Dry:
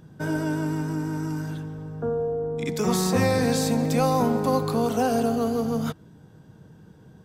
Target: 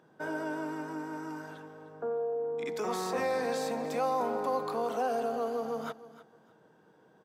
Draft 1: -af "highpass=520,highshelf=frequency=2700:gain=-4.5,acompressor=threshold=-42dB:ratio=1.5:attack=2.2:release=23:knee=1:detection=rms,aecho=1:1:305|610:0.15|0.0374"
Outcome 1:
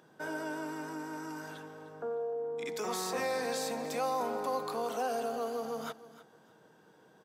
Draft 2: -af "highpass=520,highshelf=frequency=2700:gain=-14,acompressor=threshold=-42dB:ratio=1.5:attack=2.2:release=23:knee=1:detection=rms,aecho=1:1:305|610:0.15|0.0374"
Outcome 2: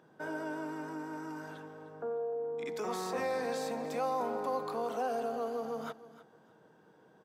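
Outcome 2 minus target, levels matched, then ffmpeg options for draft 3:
downward compressor: peak gain reduction +3 dB
-af "highpass=520,highshelf=frequency=2700:gain=-14,acompressor=threshold=-32.5dB:ratio=1.5:attack=2.2:release=23:knee=1:detection=rms,aecho=1:1:305|610:0.15|0.0374"

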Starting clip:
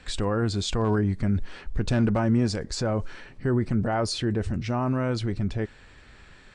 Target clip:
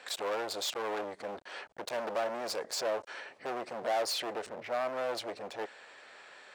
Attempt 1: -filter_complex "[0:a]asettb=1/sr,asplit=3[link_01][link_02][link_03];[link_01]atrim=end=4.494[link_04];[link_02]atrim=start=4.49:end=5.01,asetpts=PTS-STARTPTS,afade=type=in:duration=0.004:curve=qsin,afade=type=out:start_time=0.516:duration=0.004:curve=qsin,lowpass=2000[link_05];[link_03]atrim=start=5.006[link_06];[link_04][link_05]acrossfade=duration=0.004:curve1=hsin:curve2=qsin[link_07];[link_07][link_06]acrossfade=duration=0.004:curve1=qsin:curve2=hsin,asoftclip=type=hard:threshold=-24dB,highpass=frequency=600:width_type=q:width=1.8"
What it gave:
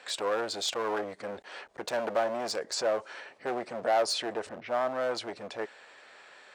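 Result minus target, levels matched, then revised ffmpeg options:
hard clipping: distortion −4 dB
-filter_complex "[0:a]asettb=1/sr,asplit=3[link_01][link_02][link_03];[link_01]atrim=end=4.494[link_04];[link_02]atrim=start=4.49:end=5.01,asetpts=PTS-STARTPTS,afade=type=in:duration=0.004:curve=qsin,afade=type=out:start_time=0.516:duration=0.004:curve=qsin,lowpass=2000[link_05];[link_03]atrim=start=5.006[link_06];[link_04][link_05]acrossfade=duration=0.004:curve1=hsin:curve2=qsin[link_07];[link_07][link_06]acrossfade=duration=0.004:curve1=qsin:curve2=hsin,asoftclip=type=hard:threshold=-31dB,highpass=frequency=600:width_type=q:width=1.8"

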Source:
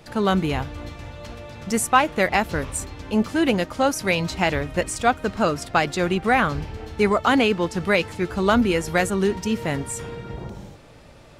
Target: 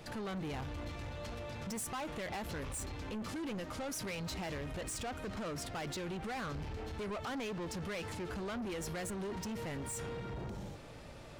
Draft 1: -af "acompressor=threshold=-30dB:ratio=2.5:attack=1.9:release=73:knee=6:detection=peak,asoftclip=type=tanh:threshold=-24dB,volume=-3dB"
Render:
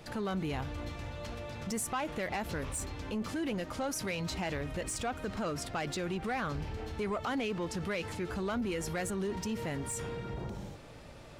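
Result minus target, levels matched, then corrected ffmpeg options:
soft clipping: distortion −9 dB
-af "acompressor=threshold=-30dB:ratio=2.5:attack=1.9:release=73:knee=6:detection=peak,asoftclip=type=tanh:threshold=-34dB,volume=-3dB"

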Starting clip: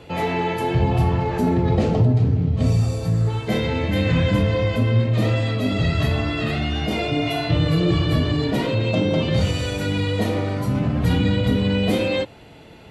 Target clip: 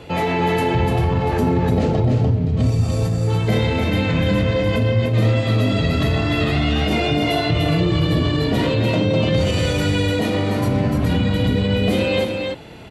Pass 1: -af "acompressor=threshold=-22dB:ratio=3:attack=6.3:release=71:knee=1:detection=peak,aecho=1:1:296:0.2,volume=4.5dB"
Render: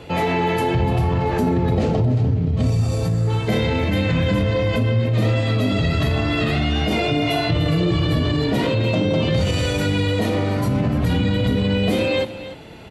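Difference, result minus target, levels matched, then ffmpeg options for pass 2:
echo-to-direct −9.5 dB
-af "acompressor=threshold=-22dB:ratio=3:attack=6.3:release=71:knee=1:detection=peak,aecho=1:1:296:0.596,volume=4.5dB"

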